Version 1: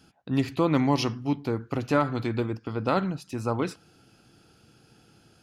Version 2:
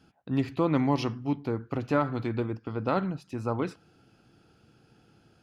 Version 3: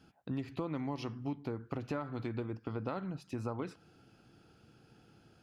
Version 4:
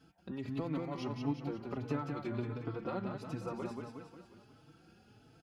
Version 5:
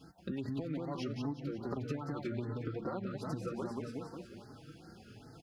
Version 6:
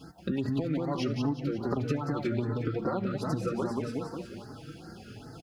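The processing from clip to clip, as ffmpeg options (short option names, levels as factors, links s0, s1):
-af "highshelf=f=4300:g=-11,volume=0.794"
-af "acompressor=threshold=0.0224:ratio=6,volume=0.841"
-filter_complex "[0:a]aecho=1:1:180|360|540|720|900|1080|1260:0.596|0.322|0.174|0.0938|0.0506|0.0274|0.0148,asplit=2[s0][s1];[s1]adelay=4.1,afreqshift=1.5[s2];[s0][s2]amix=inputs=2:normalize=1,volume=1.19"
-af "acompressor=threshold=0.00708:ratio=6,afftfilt=real='re*(1-between(b*sr/1024,810*pow(3000/810,0.5+0.5*sin(2*PI*2.5*pts/sr))/1.41,810*pow(3000/810,0.5+0.5*sin(2*PI*2.5*pts/sr))*1.41))':imag='im*(1-between(b*sr/1024,810*pow(3000/810,0.5+0.5*sin(2*PI*2.5*pts/sr))/1.41,810*pow(3000/810,0.5+0.5*sin(2*PI*2.5*pts/sr))*1.41))':win_size=1024:overlap=0.75,volume=2.51"
-af "aecho=1:1:74|148|222:0.0841|0.0387|0.0178,volume=2.51"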